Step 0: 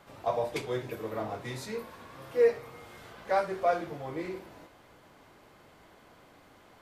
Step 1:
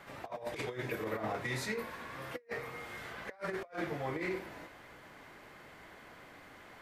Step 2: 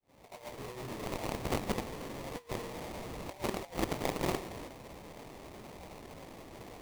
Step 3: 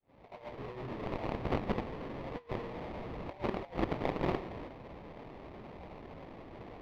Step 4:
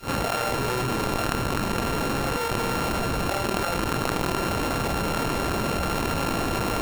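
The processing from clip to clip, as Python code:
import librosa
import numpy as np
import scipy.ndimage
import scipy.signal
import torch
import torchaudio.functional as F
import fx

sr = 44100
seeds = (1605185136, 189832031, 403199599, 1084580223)

y1 = fx.peak_eq(x, sr, hz=1900.0, db=8.0, octaves=0.85)
y1 = fx.hum_notches(y1, sr, base_hz=50, count=2)
y1 = fx.over_compress(y1, sr, threshold_db=-35.0, ratio=-0.5)
y1 = y1 * librosa.db_to_amplitude(-3.5)
y2 = fx.fade_in_head(y1, sr, length_s=1.52)
y2 = fx.cheby_harmonics(y2, sr, harmonics=(7,), levels_db=(-10,), full_scale_db=-24.0)
y2 = fx.sample_hold(y2, sr, seeds[0], rate_hz=1500.0, jitter_pct=20)
y2 = y2 * librosa.db_to_amplitude(4.0)
y3 = fx.air_absorb(y2, sr, metres=330.0)
y3 = y3 * librosa.db_to_amplitude(1.5)
y4 = np.r_[np.sort(y3[:len(y3) // 32 * 32].reshape(-1, 32), axis=1).ravel(), y3[len(y3) // 32 * 32:]]
y4 = fx.env_flatten(y4, sr, amount_pct=100)
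y4 = y4 * librosa.db_to_amplitude(2.5)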